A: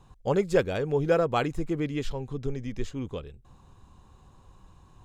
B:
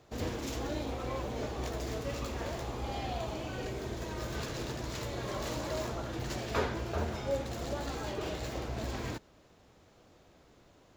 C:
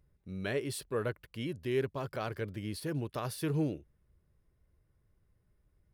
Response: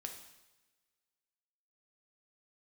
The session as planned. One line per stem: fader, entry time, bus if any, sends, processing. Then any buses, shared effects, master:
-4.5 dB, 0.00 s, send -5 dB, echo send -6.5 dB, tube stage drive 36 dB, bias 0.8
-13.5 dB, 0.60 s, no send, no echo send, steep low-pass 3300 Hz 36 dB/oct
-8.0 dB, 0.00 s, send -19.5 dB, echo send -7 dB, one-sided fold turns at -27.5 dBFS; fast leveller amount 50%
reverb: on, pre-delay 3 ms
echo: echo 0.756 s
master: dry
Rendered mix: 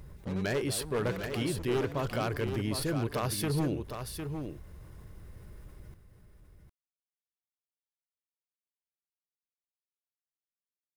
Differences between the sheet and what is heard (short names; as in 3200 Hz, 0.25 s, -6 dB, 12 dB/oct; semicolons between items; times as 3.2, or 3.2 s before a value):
stem A: send off; stem B: muted; stem C -8.0 dB -> +0.5 dB